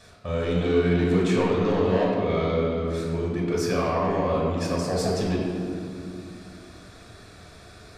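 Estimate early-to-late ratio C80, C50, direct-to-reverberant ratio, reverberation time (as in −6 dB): 2.0 dB, 0.0 dB, −4.0 dB, 2.5 s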